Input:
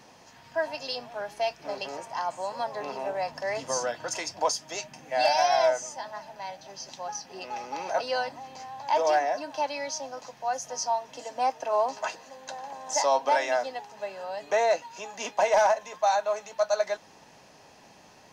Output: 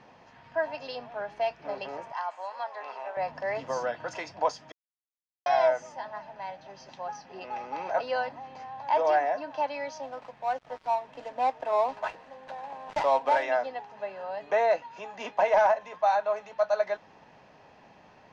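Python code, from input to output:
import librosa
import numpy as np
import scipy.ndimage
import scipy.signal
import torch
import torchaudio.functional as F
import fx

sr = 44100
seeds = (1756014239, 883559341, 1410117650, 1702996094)

y = fx.highpass(x, sr, hz=820.0, slope=12, at=(2.12, 3.17))
y = fx.dead_time(y, sr, dead_ms=0.099, at=(10.03, 13.43))
y = fx.edit(y, sr, fx.silence(start_s=4.72, length_s=0.74), tone=tone)
y = scipy.signal.sosfilt(scipy.signal.butter(2, 2600.0, 'lowpass', fs=sr, output='sos'), y)
y = fx.peak_eq(y, sr, hz=320.0, db=-2.0, octaves=0.77)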